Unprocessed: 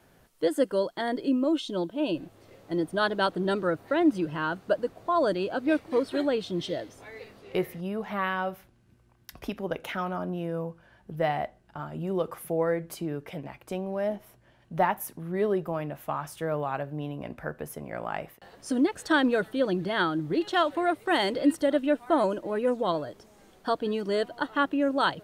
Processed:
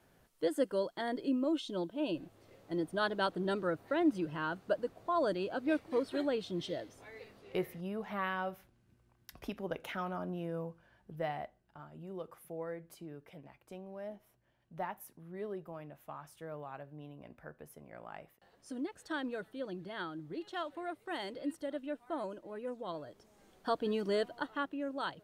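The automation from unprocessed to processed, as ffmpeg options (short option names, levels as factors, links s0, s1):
-af "volume=1.58,afade=t=out:st=10.57:d=1.33:silence=0.398107,afade=t=in:st=22.85:d=1.19:silence=0.281838,afade=t=out:st=24.04:d=0.65:silence=0.354813"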